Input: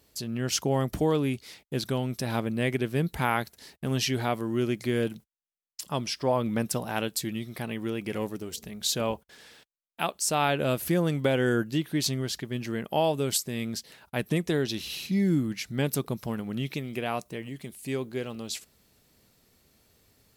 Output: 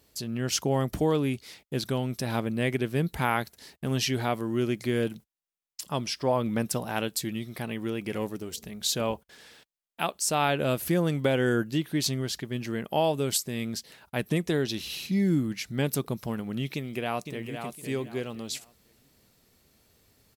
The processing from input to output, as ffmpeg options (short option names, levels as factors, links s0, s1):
-filter_complex "[0:a]asplit=2[s0][s1];[s1]afade=t=in:st=16.74:d=0.01,afade=t=out:st=17.6:d=0.01,aecho=0:1:510|1020|1530:0.446684|0.111671|0.0279177[s2];[s0][s2]amix=inputs=2:normalize=0"